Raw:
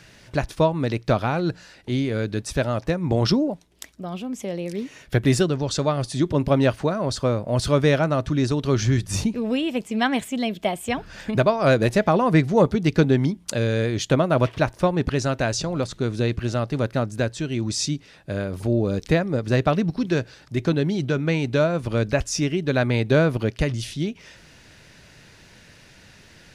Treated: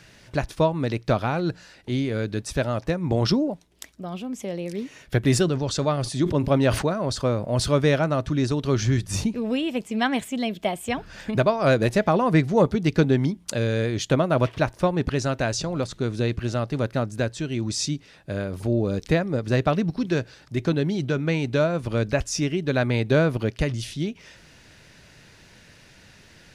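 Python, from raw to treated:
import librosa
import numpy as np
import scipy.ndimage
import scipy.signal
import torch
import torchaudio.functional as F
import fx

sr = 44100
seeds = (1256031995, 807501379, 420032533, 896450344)

y = fx.sustainer(x, sr, db_per_s=99.0, at=(5.27, 7.77))
y = y * 10.0 ** (-1.5 / 20.0)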